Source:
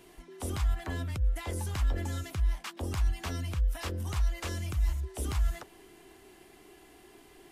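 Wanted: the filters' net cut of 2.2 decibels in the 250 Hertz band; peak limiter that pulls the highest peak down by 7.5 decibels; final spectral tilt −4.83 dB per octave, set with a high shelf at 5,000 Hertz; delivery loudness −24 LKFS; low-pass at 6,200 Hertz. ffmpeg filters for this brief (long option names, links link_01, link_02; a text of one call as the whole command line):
ffmpeg -i in.wav -af "lowpass=6200,equalizer=frequency=250:width_type=o:gain=-3,highshelf=frequency=5000:gain=6.5,volume=12.5dB,alimiter=limit=-14dB:level=0:latency=1" out.wav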